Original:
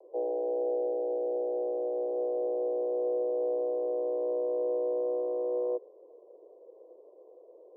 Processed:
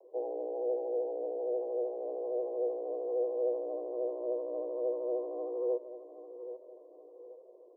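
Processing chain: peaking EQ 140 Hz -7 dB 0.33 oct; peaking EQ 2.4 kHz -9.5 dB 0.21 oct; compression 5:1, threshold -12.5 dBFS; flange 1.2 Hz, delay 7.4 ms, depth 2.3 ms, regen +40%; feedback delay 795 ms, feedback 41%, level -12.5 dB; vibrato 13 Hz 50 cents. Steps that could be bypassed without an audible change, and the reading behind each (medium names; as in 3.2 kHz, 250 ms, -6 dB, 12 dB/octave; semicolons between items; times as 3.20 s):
peaking EQ 140 Hz: input has nothing below 300 Hz; peaking EQ 2.4 kHz: input has nothing above 810 Hz; compression, threshold -12.5 dBFS: peak at its input -24.0 dBFS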